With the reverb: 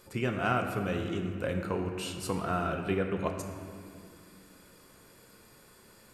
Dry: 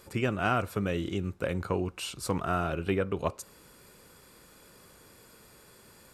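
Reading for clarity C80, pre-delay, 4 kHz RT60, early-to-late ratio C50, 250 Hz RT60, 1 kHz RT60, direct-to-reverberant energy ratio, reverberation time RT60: 6.0 dB, 3 ms, 1.5 s, 5.0 dB, 4.0 s, 2.1 s, 3.0 dB, 2.4 s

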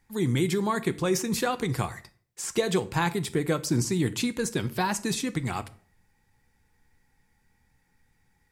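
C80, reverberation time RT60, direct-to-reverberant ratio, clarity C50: 22.0 dB, 0.45 s, 11.5 dB, 18.0 dB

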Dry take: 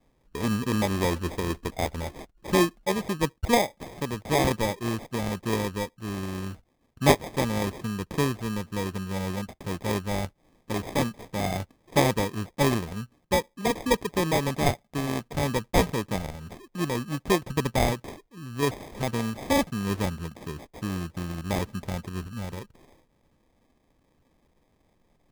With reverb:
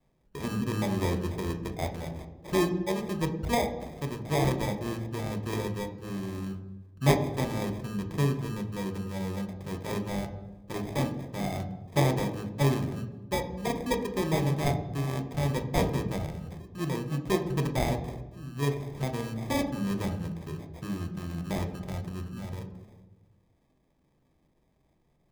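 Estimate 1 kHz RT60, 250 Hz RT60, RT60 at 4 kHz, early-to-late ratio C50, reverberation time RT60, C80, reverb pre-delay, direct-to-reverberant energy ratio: 1.0 s, 1.5 s, 0.90 s, 10.5 dB, 1.2 s, 12.5 dB, 3 ms, 5.5 dB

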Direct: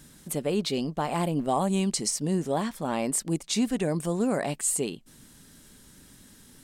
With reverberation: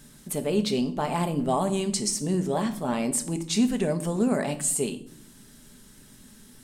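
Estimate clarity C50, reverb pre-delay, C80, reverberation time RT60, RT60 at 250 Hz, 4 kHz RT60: 14.5 dB, 4 ms, 18.0 dB, 0.70 s, 1.2 s, 0.45 s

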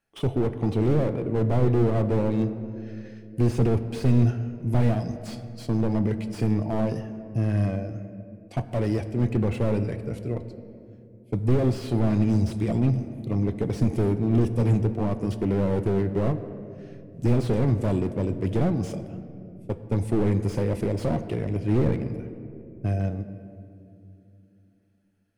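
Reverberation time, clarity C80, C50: 2.6 s, 12.5 dB, 12.0 dB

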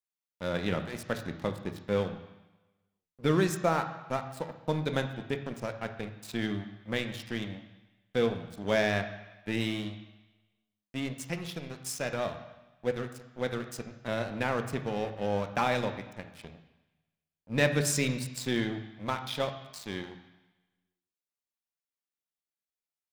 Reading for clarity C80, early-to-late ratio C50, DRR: 11.5 dB, 10.0 dB, 7.0 dB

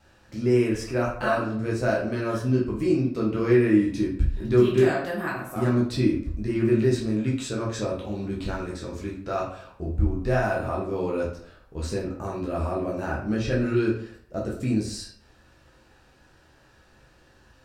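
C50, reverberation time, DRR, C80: 5.0 dB, 0.60 s, -5.0 dB, 9.0 dB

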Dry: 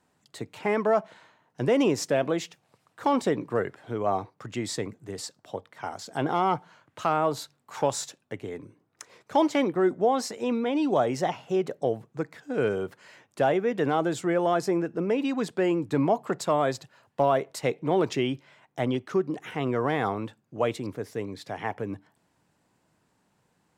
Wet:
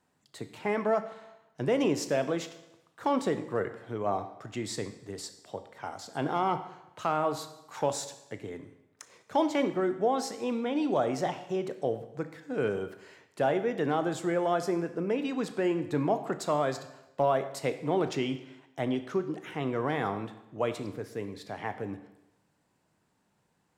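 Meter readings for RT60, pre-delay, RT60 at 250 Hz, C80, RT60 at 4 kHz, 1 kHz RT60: 0.90 s, 20 ms, 0.90 s, 14.0 dB, 0.90 s, 0.90 s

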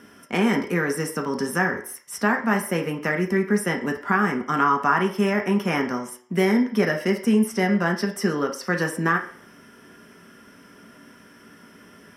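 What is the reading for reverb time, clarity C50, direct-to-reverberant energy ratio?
0.50 s, 10.0 dB, 2.0 dB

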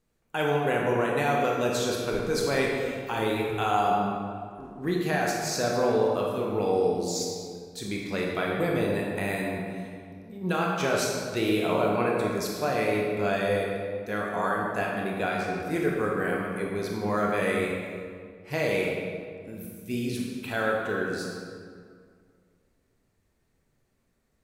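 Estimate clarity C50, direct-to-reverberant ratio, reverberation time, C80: 0.0 dB, -2.5 dB, 2.0 s, 2.0 dB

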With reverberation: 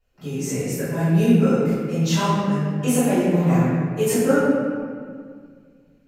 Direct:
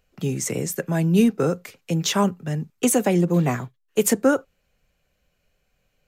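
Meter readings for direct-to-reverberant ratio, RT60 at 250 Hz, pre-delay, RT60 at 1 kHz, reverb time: -18.0 dB, 2.5 s, 3 ms, 1.9 s, 2.0 s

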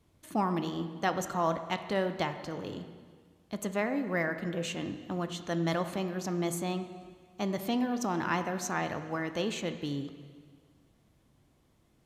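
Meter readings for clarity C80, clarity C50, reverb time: 10.5 dB, 9.5 dB, 1.7 s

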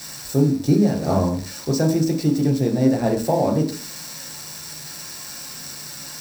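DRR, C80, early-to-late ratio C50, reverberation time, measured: 0.0 dB, 12.0 dB, 9.5 dB, 0.50 s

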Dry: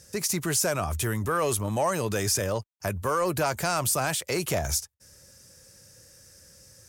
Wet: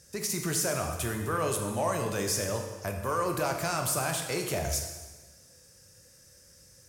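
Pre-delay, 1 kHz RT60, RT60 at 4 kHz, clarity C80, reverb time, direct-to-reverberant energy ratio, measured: 7 ms, 1.3 s, 1.2 s, 7.0 dB, 1.3 s, 3.0 dB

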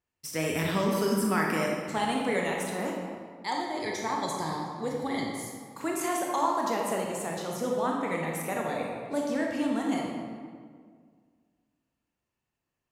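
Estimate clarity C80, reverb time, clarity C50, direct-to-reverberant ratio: 2.5 dB, 1.9 s, 0.5 dB, -1.5 dB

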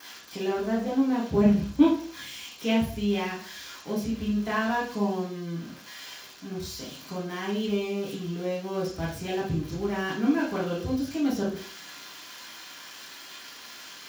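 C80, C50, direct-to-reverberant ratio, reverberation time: 9.5 dB, 4.5 dB, -6.0 dB, 0.45 s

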